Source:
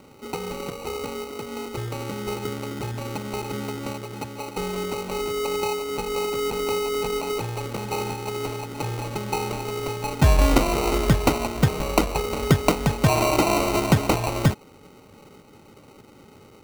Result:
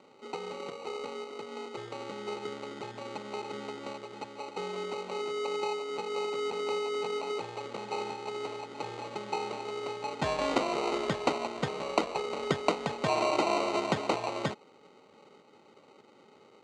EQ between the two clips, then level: cabinet simulation 290–6500 Hz, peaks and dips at 290 Hz -4 dB, 1.5 kHz -3 dB, 2.5 kHz -3 dB, 5.6 kHz -8 dB; -5.5 dB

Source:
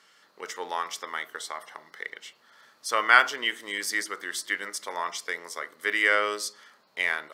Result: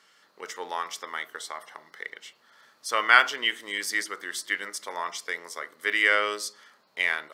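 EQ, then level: dynamic bell 2.9 kHz, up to +4 dB, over -34 dBFS, Q 1.2; -1.0 dB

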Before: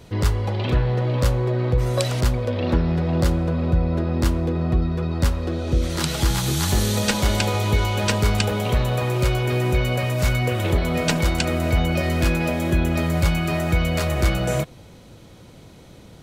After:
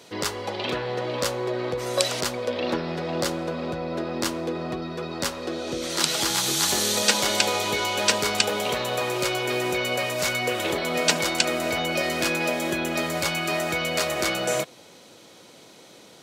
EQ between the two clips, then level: high-pass 330 Hz 12 dB/octave; peaking EQ 5.7 kHz +5.5 dB 1.9 oct; 0.0 dB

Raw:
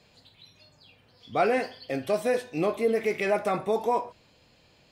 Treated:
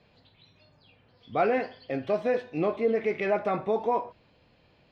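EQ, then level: distance through air 240 m; 0.0 dB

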